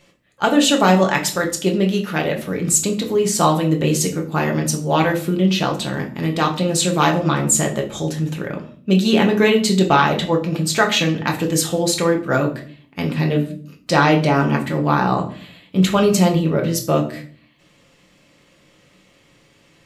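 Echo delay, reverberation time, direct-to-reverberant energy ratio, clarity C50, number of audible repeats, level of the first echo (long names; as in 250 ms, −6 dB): no echo audible, 0.45 s, 1.5 dB, 11.0 dB, no echo audible, no echo audible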